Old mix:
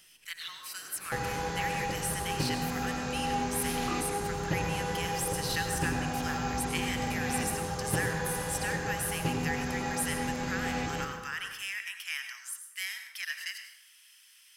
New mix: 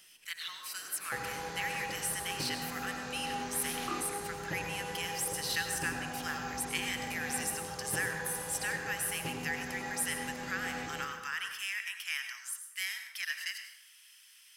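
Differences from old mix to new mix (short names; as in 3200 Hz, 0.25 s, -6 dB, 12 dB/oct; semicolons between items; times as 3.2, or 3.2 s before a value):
second sound -6.0 dB; master: add low shelf 150 Hz -9 dB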